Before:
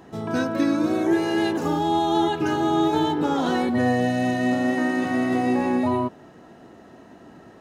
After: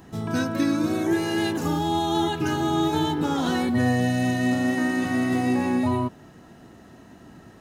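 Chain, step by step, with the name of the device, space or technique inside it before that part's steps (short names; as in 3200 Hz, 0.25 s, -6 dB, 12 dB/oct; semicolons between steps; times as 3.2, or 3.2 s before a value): smiley-face EQ (low shelf 170 Hz +7.5 dB; bell 510 Hz -5.5 dB 2 oct; high shelf 7000 Hz +8.5 dB)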